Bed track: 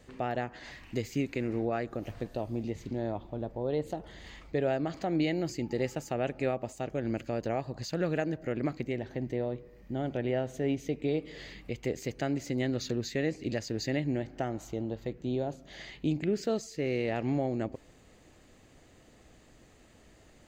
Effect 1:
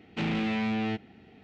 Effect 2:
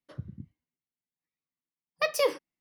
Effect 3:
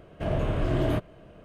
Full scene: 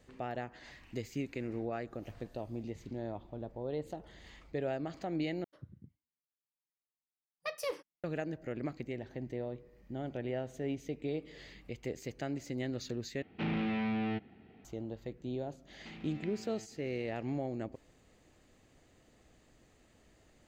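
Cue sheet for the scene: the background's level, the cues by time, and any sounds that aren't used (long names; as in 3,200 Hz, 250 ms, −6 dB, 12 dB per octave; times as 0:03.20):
bed track −6.5 dB
0:05.44: overwrite with 2 −11.5 dB + highs frequency-modulated by the lows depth 0.38 ms
0:13.22: overwrite with 1 −4 dB + high-frequency loss of the air 230 metres
0:15.69: mix in 1 −6.5 dB + downward compressor 8 to 1, threshold −42 dBFS
not used: 3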